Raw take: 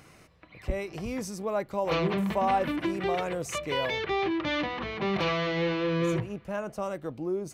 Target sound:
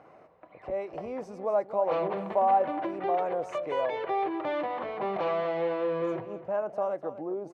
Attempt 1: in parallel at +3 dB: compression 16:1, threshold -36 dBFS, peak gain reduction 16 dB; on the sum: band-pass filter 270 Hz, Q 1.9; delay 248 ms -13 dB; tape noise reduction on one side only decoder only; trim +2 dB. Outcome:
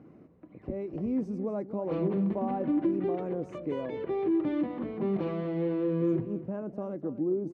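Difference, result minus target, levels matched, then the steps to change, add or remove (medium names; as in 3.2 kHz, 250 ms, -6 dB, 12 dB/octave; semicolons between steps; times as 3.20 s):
250 Hz band +10.5 dB
change: band-pass filter 690 Hz, Q 1.9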